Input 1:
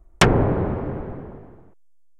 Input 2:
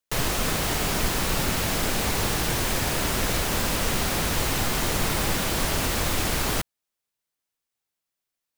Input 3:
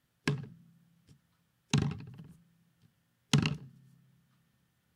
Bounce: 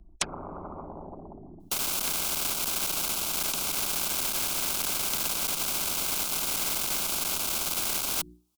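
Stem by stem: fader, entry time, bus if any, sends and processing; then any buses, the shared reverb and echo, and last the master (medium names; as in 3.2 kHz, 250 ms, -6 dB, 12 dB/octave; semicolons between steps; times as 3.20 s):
0.74 s -5.5 dB -> 1.35 s -15 dB, 0.00 s, no send, resonances exaggerated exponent 2; peaking EQ 1.7 kHz -7 dB 0.43 oct
-10.5 dB, 1.60 s, no send, hum notches 60/120/180/240/300/360 Hz; one-sided clip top -33 dBFS; random flutter of the level, depth 60%
-14.0 dB, 1.80 s, no send, none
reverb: none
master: peaking EQ 160 Hz +11.5 dB 0.27 oct; static phaser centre 490 Hz, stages 6; spectrum-flattening compressor 10:1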